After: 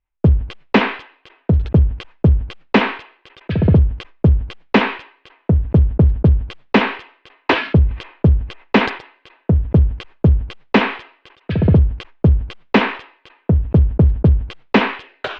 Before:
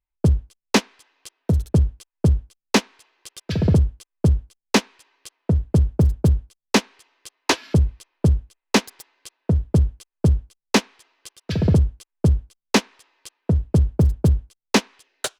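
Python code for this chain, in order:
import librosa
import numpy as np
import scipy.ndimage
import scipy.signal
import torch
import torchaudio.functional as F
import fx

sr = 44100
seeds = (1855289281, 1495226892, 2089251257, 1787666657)

y = scipy.signal.sosfilt(scipy.signal.butter(4, 2900.0, 'lowpass', fs=sr, output='sos'), x)
y = fx.sustainer(y, sr, db_per_s=120.0)
y = y * librosa.db_to_amplitude(4.5)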